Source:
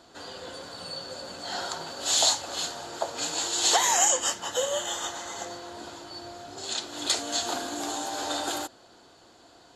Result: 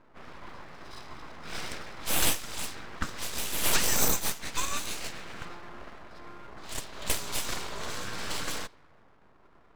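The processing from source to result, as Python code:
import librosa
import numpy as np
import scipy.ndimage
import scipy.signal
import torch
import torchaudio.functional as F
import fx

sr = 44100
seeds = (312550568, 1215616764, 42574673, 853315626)

y = fx.env_lowpass(x, sr, base_hz=780.0, full_db=-24.5)
y = np.abs(y)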